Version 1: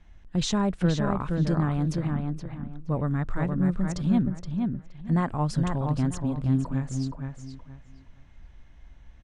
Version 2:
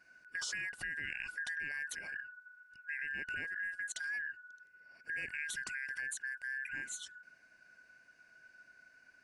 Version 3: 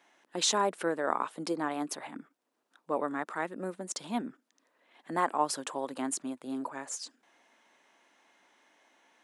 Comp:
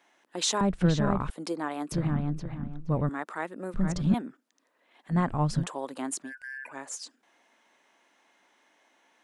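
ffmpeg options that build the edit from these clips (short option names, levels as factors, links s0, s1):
-filter_complex "[0:a]asplit=4[s0][s1][s2][s3];[2:a]asplit=6[s4][s5][s6][s7][s8][s9];[s4]atrim=end=0.612[s10];[s0]atrim=start=0.608:end=1.302[s11];[s5]atrim=start=1.298:end=1.922[s12];[s1]atrim=start=1.918:end=3.092[s13];[s6]atrim=start=3.088:end=3.742[s14];[s2]atrim=start=3.738:end=4.142[s15];[s7]atrim=start=4.138:end=5.18[s16];[s3]atrim=start=5.08:end=5.67[s17];[s8]atrim=start=5.57:end=6.33[s18];[1:a]atrim=start=6.23:end=6.74[s19];[s9]atrim=start=6.64[s20];[s10][s11]acrossfade=d=0.004:c1=hsin:c2=hsin[s21];[s21][s12]acrossfade=d=0.004:c1=hsin:c2=hsin[s22];[s22][s13]acrossfade=d=0.004:c1=hsin:c2=hsin[s23];[s23][s14]acrossfade=d=0.004:c1=hsin:c2=hsin[s24];[s24][s15]acrossfade=d=0.004:c1=hsin:c2=hsin[s25];[s25][s16]acrossfade=d=0.004:c1=hsin:c2=hsin[s26];[s26][s17]acrossfade=d=0.1:c1=tri:c2=tri[s27];[s27][s18]acrossfade=d=0.1:c1=tri:c2=tri[s28];[s28][s19]acrossfade=d=0.1:c1=tri:c2=tri[s29];[s29][s20]acrossfade=d=0.1:c1=tri:c2=tri"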